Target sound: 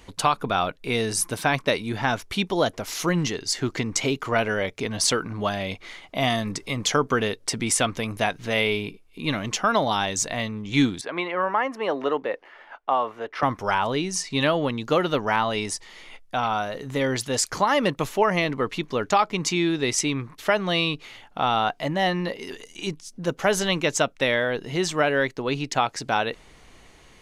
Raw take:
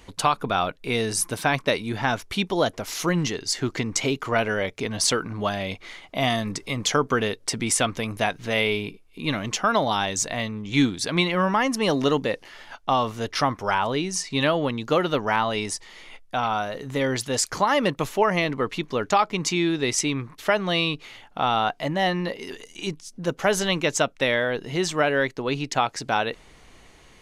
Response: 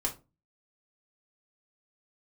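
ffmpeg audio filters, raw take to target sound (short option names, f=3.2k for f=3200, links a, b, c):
-filter_complex "[0:a]asettb=1/sr,asplit=3[a][b][c];[a]atrim=end=11.014[d];[b]atrim=start=11.01:end=13.43,asetpts=PTS-STARTPTS,afade=t=in:d=0.004:c=qsin,afade=t=out:st=2.416:d=0.004:c=qsin,acrossover=split=330 2400:gain=0.0891 1 0.0891[e][f][g];[e][f][g]amix=inputs=3:normalize=0[h];[c]atrim=start=13.426[i];[d][h]acrossfade=d=0.004:c1=hsin:c2=qsin[j];[j][i]acrossfade=d=0.004:c1=qsin:c2=hsin"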